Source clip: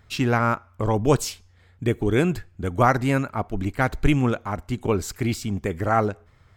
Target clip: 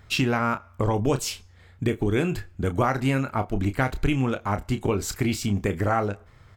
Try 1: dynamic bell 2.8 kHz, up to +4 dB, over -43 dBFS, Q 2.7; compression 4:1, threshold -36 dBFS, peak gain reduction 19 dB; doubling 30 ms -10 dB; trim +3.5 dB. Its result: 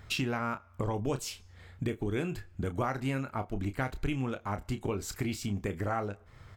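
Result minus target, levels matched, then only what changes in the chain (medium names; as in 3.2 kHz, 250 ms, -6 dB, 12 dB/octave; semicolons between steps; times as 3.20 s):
compression: peak gain reduction +9 dB
change: compression 4:1, threshold -24 dBFS, peak gain reduction 10 dB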